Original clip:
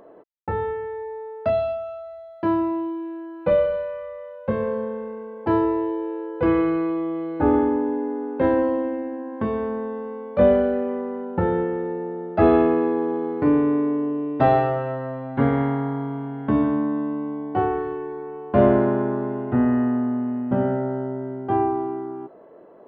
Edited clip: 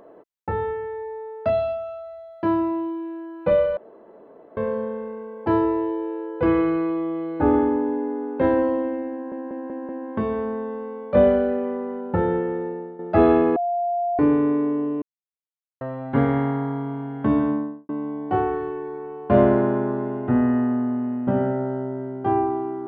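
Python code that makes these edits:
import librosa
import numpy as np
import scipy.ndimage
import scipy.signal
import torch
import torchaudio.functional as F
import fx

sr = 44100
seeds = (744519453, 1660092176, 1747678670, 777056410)

y = fx.studio_fade_out(x, sr, start_s=16.7, length_s=0.43)
y = fx.edit(y, sr, fx.room_tone_fill(start_s=3.77, length_s=0.8),
    fx.stutter(start_s=9.13, slice_s=0.19, count=5),
    fx.fade_out_to(start_s=11.73, length_s=0.5, curve='qsin', floor_db=-10.5),
    fx.bleep(start_s=12.8, length_s=0.63, hz=698.0, db=-20.5),
    fx.silence(start_s=14.26, length_s=0.79), tone=tone)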